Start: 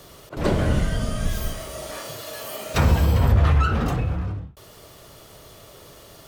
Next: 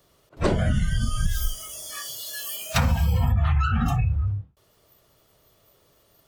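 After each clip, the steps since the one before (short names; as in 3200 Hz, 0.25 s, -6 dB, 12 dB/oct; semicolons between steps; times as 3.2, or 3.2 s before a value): spectral noise reduction 21 dB; compressor 6:1, threshold -23 dBFS, peak gain reduction 10.5 dB; gain +5 dB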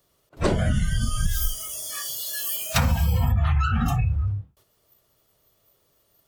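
gate -56 dBFS, range -7 dB; high shelf 7000 Hz +6.5 dB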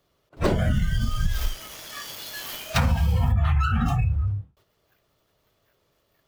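median filter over 5 samples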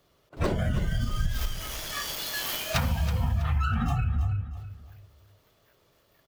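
compressor 4:1, threshold -28 dBFS, peak gain reduction 10 dB; on a send: feedback echo 0.325 s, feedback 32%, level -12 dB; on the sum: gain +3.5 dB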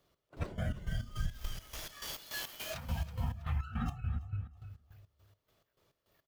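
step gate "x.x.x.x." 104 bpm -12 dB; gain -7.5 dB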